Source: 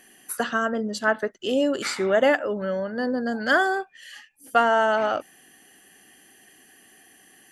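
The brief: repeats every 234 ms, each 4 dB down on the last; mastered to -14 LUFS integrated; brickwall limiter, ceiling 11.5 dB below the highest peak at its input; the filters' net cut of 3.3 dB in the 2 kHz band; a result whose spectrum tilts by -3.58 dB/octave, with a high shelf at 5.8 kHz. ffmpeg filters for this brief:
-af "equalizer=f=2000:t=o:g=-5.5,highshelf=f=5800:g=8,alimiter=limit=0.112:level=0:latency=1,aecho=1:1:234|468|702|936|1170|1404|1638|1872|2106:0.631|0.398|0.25|0.158|0.0994|0.0626|0.0394|0.0249|0.0157,volume=4.22"

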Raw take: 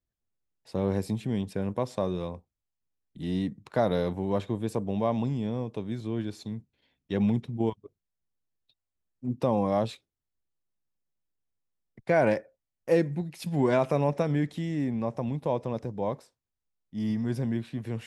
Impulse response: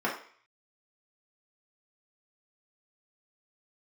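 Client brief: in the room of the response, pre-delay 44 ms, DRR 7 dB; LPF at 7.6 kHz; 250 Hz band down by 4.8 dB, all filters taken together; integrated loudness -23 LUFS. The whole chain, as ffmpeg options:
-filter_complex "[0:a]lowpass=7600,equalizer=f=250:t=o:g=-6.5,asplit=2[s0][s1];[1:a]atrim=start_sample=2205,adelay=44[s2];[s1][s2]afir=irnorm=-1:irlink=0,volume=0.133[s3];[s0][s3]amix=inputs=2:normalize=0,volume=2.51"

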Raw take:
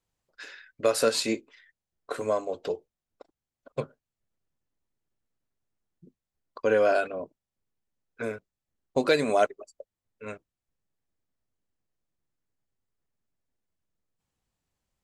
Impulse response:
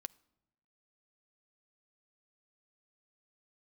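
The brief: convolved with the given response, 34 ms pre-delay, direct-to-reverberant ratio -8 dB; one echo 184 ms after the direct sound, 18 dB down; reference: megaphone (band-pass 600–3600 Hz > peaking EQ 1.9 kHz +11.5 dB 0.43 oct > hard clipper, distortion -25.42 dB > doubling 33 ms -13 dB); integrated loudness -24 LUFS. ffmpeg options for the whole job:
-filter_complex "[0:a]aecho=1:1:184:0.126,asplit=2[s0][s1];[1:a]atrim=start_sample=2205,adelay=34[s2];[s1][s2]afir=irnorm=-1:irlink=0,volume=3.98[s3];[s0][s3]amix=inputs=2:normalize=0,highpass=600,lowpass=3600,equalizer=f=1900:t=o:w=0.43:g=11.5,asoftclip=type=hard:threshold=0.473,asplit=2[s4][s5];[s5]adelay=33,volume=0.224[s6];[s4][s6]amix=inputs=2:normalize=0,volume=0.794"

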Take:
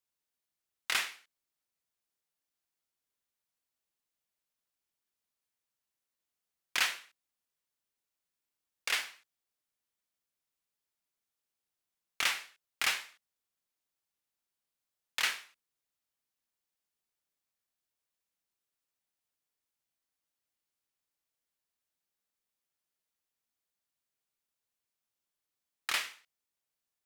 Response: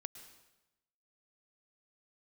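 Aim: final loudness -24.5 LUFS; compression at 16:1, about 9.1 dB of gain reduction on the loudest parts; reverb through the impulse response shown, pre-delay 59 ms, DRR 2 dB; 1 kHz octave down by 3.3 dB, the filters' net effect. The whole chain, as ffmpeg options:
-filter_complex "[0:a]equalizer=f=1000:t=o:g=-4.5,acompressor=threshold=0.0178:ratio=16,asplit=2[s0][s1];[1:a]atrim=start_sample=2205,adelay=59[s2];[s1][s2]afir=irnorm=-1:irlink=0,volume=1.26[s3];[s0][s3]amix=inputs=2:normalize=0,volume=6.68"

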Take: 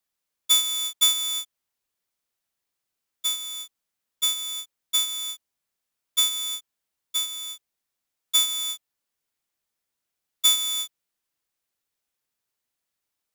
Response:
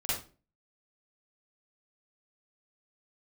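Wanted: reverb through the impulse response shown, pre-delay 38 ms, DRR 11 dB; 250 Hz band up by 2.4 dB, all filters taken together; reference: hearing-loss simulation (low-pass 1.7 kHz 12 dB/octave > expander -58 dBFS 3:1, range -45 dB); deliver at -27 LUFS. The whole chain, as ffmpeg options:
-filter_complex "[0:a]equalizer=f=250:t=o:g=3.5,asplit=2[s0][s1];[1:a]atrim=start_sample=2205,adelay=38[s2];[s1][s2]afir=irnorm=-1:irlink=0,volume=0.141[s3];[s0][s3]amix=inputs=2:normalize=0,lowpass=1700,agate=range=0.00562:threshold=0.00126:ratio=3,volume=3.76"

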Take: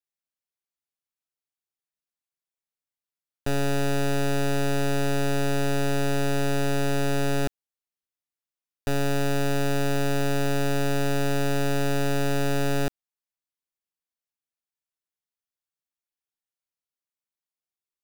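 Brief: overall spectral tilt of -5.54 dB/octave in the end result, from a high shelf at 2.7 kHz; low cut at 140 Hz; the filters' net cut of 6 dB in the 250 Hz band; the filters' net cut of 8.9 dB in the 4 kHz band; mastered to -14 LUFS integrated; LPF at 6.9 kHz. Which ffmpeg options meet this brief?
-af "highpass=140,lowpass=6900,equalizer=f=250:t=o:g=-6.5,highshelf=f=2700:g=-7.5,equalizer=f=4000:t=o:g=-5,volume=6.68"

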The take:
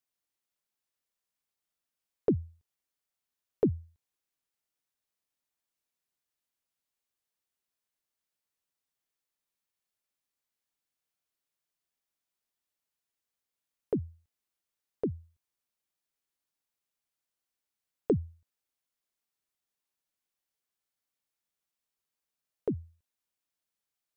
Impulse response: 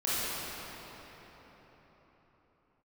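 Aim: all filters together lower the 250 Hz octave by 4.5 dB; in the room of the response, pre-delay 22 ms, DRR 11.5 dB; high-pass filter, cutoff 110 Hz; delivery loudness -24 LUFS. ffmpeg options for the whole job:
-filter_complex "[0:a]highpass=110,equalizer=f=250:t=o:g=-6,asplit=2[s0][s1];[1:a]atrim=start_sample=2205,adelay=22[s2];[s1][s2]afir=irnorm=-1:irlink=0,volume=0.0794[s3];[s0][s3]amix=inputs=2:normalize=0,volume=5.62"

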